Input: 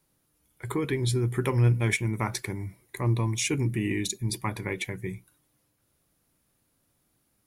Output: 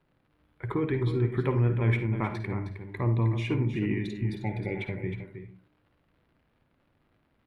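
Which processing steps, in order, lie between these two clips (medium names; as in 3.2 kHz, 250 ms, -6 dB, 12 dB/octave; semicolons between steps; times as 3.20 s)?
spectral replace 4.12–4.91 s, 900–1900 Hz both; in parallel at -0.5 dB: compression, threshold -35 dBFS, peak gain reduction 15.5 dB; on the sum: crackle 140 per s -46 dBFS; distance through air 470 m; delay 313 ms -9.5 dB; on a send at -8 dB: reverberation RT60 0.35 s, pre-delay 49 ms; on the sum: trim -2 dB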